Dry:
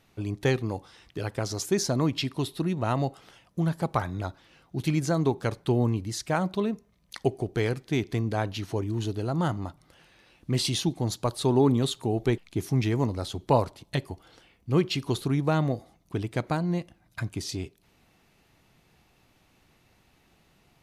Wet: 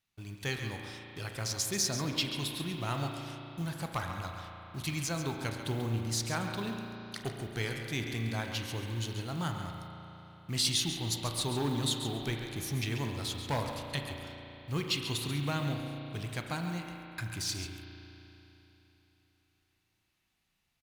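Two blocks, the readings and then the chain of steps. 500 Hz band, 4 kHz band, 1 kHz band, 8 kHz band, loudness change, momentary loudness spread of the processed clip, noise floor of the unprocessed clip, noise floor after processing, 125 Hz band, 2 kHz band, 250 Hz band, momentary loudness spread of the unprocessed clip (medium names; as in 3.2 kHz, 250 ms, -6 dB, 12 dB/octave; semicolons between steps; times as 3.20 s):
-11.5 dB, +1.0 dB, -7.0 dB, +2.0 dB, -6.5 dB, 12 LU, -64 dBFS, -78 dBFS, -7.0 dB, -1.5 dB, -9.5 dB, 11 LU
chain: companding laws mixed up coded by mu; hard clipper -14 dBFS, distortion -27 dB; on a send: feedback delay 137 ms, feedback 16%, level -10 dB; on the sum: gate -44 dBFS, range -20 dB; level rider gain up to 4 dB; amplifier tone stack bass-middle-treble 5-5-5; spring tank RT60 3.5 s, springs 35 ms, chirp 20 ms, DRR 3.5 dB; trim +2 dB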